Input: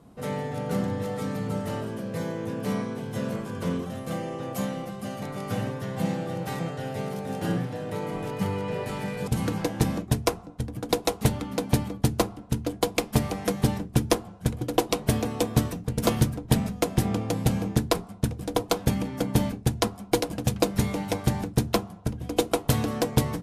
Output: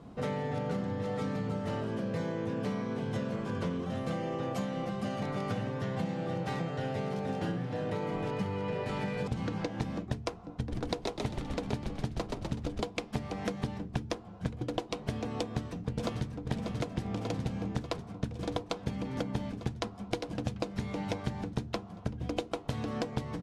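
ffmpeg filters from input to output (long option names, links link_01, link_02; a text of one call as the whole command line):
ffmpeg -i in.wav -filter_complex "[0:a]asettb=1/sr,asplit=3[link_01][link_02][link_03];[link_01]atrim=end=9.344[link_04];[link_02]atrim=start=9.34:end=9.77,asetpts=PTS-STARTPTS,afade=type=in:duration=0.004:curve=qsin,afade=type=out:start_time=0.426:duration=0.004:curve=qsin,acrossover=split=8400[link_05][link_06];[link_06]acompressor=threshold=-57dB:ratio=4:attack=1:release=60[link_07];[link_05][link_07]amix=inputs=2:normalize=0[link_08];[link_03]atrim=start=9.766[link_09];[link_04][link_08]acrossfade=duration=0.004:curve1=hsin:curve2=qsin[link_10];[link_10][link_09]acrossfade=duration=0.004:curve1=qsin:curve2=hsin,asplit=3[link_11][link_12][link_13];[link_11]afade=type=out:start_time=10.67:duration=0.02[link_14];[link_12]asplit=7[link_15][link_16][link_17][link_18][link_19][link_20][link_21];[link_16]adelay=125,afreqshift=-76,volume=-5.5dB[link_22];[link_17]adelay=250,afreqshift=-152,volume=-12.1dB[link_23];[link_18]adelay=375,afreqshift=-228,volume=-18.6dB[link_24];[link_19]adelay=500,afreqshift=-304,volume=-25.2dB[link_25];[link_20]adelay=625,afreqshift=-380,volume=-31.7dB[link_26];[link_21]adelay=750,afreqshift=-456,volume=-38.3dB[link_27];[link_15][link_22][link_23][link_24][link_25][link_26][link_27]amix=inputs=7:normalize=0,afade=type=in:start_time=10.67:duration=0.02,afade=type=out:start_time=12.85:duration=0.02[link_28];[link_13]afade=type=in:start_time=12.85:duration=0.02[link_29];[link_14][link_28][link_29]amix=inputs=3:normalize=0,asplit=2[link_30][link_31];[link_31]afade=type=in:start_time=15.39:duration=0.01,afade=type=out:start_time=16.48:duration=0.01,aecho=0:1:590|1180|1770|2360|2950|3540|4130|4720|5310|5900|6490:0.375837|0.263086|0.18416|0.128912|0.0902386|0.063167|0.0442169|0.0309518|0.0216663|0.0151664|0.0106165[link_32];[link_30][link_32]amix=inputs=2:normalize=0,acompressor=threshold=-33dB:ratio=12,lowpass=5200,volume=3dB" out.wav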